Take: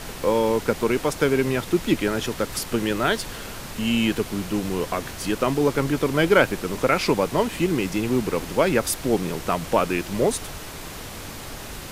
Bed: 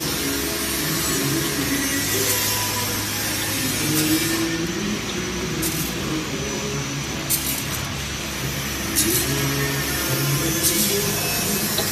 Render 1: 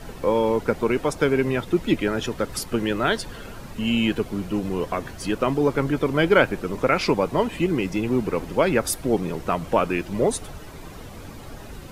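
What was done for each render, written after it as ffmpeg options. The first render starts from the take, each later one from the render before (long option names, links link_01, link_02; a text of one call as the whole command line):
ffmpeg -i in.wav -af "afftdn=noise_reduction=11:noise_floor=-36" out.wav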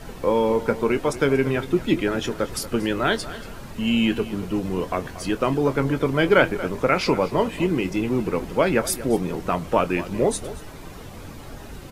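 ffmpeg -i in.wav -filter_complex "[0:a]asplit=2[link_01][link_02];[link_02]adelay=22,volume=-12dB[link_03];[link_01][link_03]amix=inputs=2:normalize=0,asplit=2[link_04][link_05];[link_05]adelay=233.2,volume=-15dB,highshelf=frequency=4000:gain=-5.25[link_06];[link_04][link_06]amix=inputs=2:normalize=0" out.wav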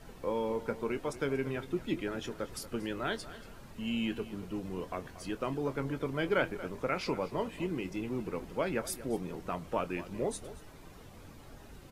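ffmpeg -i in.wav -af "volume=-13dB" out.wav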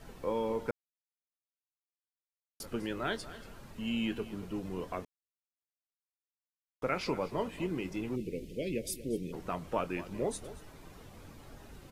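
ffmpeg -i in.wav -filter_complex "[0:a]asplit=3[link_01][link_02][link_03];[link_01]afade=type=out:start_time=8.15:duration=0.02[link_04];[link_02]asuperstop=centerf=1100:order=8:qfactor=0.62,afade=type=in:start_time=8.15:duration=0.02,afade=type=out:start_time=9.32:duration=0.02[link_05];[link_03]afade=type=in:start_time=9.32:duration=0.02[link_06];[link_04][link_05][link_06]amix=inputs=3:normalize=0,asplit=5[link_07][link_08][link_09][link_10][link_11];[link_07]atrim=end=0.71,asetpts=PTS-STARTPTS,afade=type=out:start_time=0.706:duration=0.004:curve=hsin[link_12];[link_08]atrim=start=0.71:end=2.6,asetpts=PTS-STARTPTS,volume=0[link_13];[link_09]atrim=start=2.6:end=5.05,asetpts=PTS-STARTPTS,afade=type=in:duration=0.004:curve=hsin,afade=type=out:start_time=2.446:duration=0.004:curve=hsin[link_14];[link_10]atrim=start=5.05:end=6.82,asetpts=PTS-STARTPTS,volume=0[link_15];[link_11]atrim=start=6.82,asetpts=PTS-STARTPTS,afade=type=in:duration=0.004:curve=hsin[link_16];[link_12][link_13][link_14][link_15][link_16]concat=n=5:v=0:a=1" out.wav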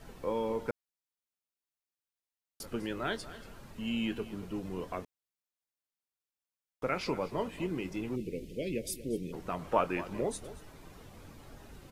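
ffmpeg -i in.wav -filter_complex "[0:a]asettb=1/sr,asplit=3[link_01][link_02][link_03];[link_01]atrim=end=9.594[link_04];[link_02]atrim=start=9.59:end=10.21,asetpts=PTS-STARTPTS,afade=type=in:duration=0.004:curve=qsin,afade=type=out:start_time=0.616:duration=0.004:curve=qsin,equalizer=frequency=1000:width=0.52:gain=6.5[link_05];[link_03]atrim=start=10.206[link_06];[link_04][link_05]acrossfade=duration=0.004:curve1=hsin:curve2=qsin[link_07];[link_07][link_06]acrossfade=duration=0.004:curve1=qsin:curve2=hsin" out.wav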